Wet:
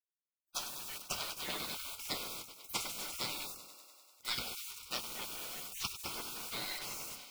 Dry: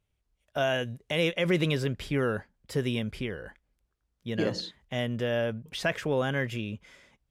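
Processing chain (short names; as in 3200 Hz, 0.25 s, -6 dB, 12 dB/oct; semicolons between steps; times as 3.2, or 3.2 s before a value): four-band scrambler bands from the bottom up 4123; HPF 84 Hz 12 dB/oct; notches 50/100/150/200 Hz; treble ducked by the level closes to 670 Hz, closed at -26 dBFS; 4.54–6.05 ten-band EQ 500 Hz +5 dB, 4000 Hz -8 dB, 8000 Hz -9 dB; bit-crush 10-bit; in parallel at -4.5 dB: overloaded stage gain 29.5 dB; on the sum: thinning echo 98 ms, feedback 78%, high-pass 260 Hz, level -13 dB; on a send at -4 dB: reverb RT60 0.25 s, pre-delay 5 ms; on the sum: spectral gate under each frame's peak -30 dB weak; gain +14.5 dB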